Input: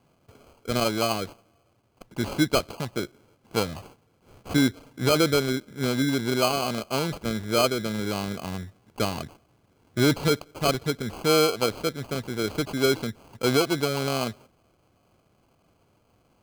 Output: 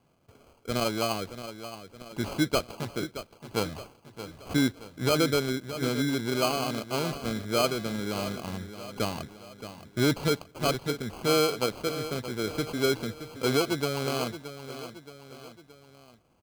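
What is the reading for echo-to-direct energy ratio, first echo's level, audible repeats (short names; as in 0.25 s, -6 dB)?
-11.0 dB, -12.0 dB, 3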